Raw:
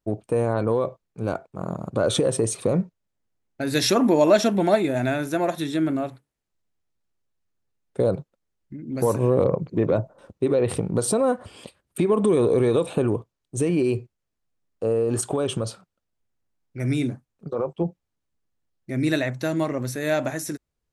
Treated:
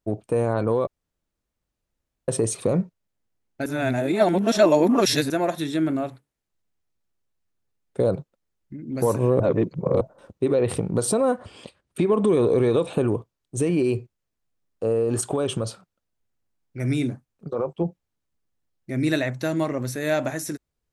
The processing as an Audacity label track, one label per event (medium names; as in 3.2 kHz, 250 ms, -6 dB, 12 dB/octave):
0.870000	2.280000	room tone
3.660000	5.300000	reverse
9.400000	10.010000	reverse
11.400000	12.930000	low-pass 7.5 kHz